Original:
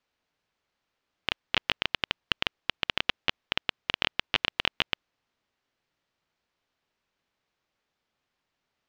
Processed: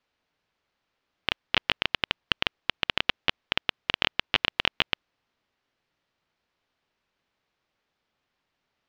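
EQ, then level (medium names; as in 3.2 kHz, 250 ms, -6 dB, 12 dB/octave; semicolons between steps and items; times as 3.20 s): low-pass 5.9 kHz; +2.5 dB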